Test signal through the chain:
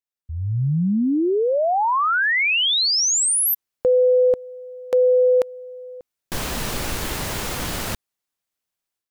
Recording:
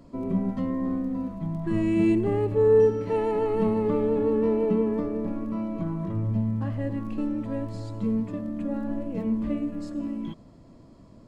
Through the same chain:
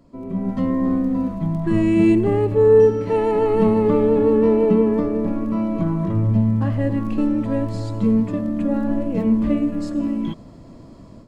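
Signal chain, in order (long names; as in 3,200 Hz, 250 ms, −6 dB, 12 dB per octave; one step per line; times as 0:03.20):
automatic gain control gain up to 12 dB
level −3 dB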